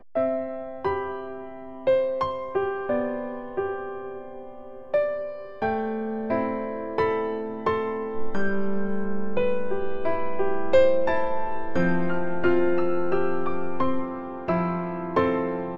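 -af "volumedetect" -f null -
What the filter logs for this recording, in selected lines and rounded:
mean_volume: -23.3 dB
max_volume: -7.3 dB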